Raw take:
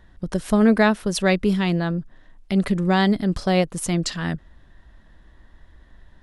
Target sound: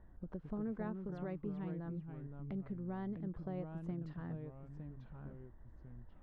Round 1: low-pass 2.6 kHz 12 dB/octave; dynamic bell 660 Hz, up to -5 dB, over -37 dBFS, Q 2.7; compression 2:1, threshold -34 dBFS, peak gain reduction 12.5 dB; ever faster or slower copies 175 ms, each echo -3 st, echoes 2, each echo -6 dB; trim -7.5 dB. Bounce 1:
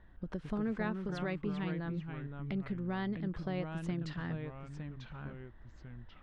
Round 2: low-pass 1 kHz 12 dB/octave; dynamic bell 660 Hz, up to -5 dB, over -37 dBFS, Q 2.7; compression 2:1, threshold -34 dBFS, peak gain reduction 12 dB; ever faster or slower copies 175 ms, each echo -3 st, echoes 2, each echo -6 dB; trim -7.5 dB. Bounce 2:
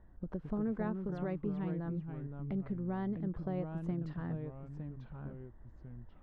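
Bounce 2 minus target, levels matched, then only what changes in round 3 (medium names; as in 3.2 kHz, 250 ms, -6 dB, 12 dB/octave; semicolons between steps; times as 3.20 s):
compression: peak gain reduction -5 dB
change: compression 2:1, threshold -44.5 dBFS, peak gain reduction 17.5 dB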